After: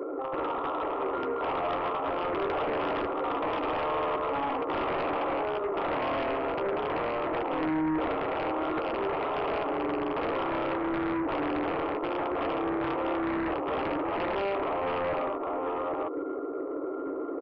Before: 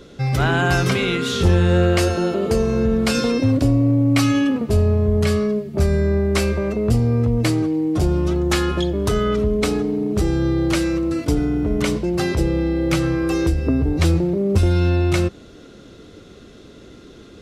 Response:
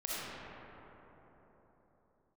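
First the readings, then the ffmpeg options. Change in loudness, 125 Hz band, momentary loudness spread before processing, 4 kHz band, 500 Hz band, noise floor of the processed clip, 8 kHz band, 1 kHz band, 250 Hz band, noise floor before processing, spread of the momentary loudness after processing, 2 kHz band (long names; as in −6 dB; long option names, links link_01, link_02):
−11.0 dB, −27.5 dB, 4 LU, −14.5 dB, −7.5 dB, −34 dBFS, below −40 dB, +1.0 dB, −13.5 dB, −43 dBFS, 2 LU, −9.0 dB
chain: -filter_complex "[0:a]aeval=exprs='(mod(5.62*val(0)+1,2)-1)/5.62':channel_layout=same,alimiter=limit=-21.5dB:level=0:latency=1,bandreject=frequency=50:width_type=h:width=6,bandreject=frequency=100:width_type=h:width=6,bandreject=frequency=150:width_type=h:width=6,bandreject=frequency=200:width_type=h:width=6,bandreject=frequency=250:width_type=h:width=6,bandreject=frequency=300:width_type=h:width=6,bandreject=frequency=350:width_type=h:width=6,bandreject=frequency=400:width_type=h:width=6,asplit=2[link_01][link_02];[link_02]aecho=0:1:61|76|800:0.316|0.398|0.335[link_03];[link_01][link_03]amix=inputs=2:normalize=0,acompressor=threshold=-36dB:ratio=3,afftfilt=real='re*between(b*sr/4096,260,1400)':imag='im*between(b*sr/4096,260,1400)':win_size=4096:overlap=0.75,aeval=exprs='0.0473*sin(PI/2*2.51*val(0)/0.0473)':channel_layout=same,asplit=2[link_04][link_05];[link_05]adelay=13,volume=-11dB[link_06];[link_04][link_06]amix=inputs=2:normalize=0"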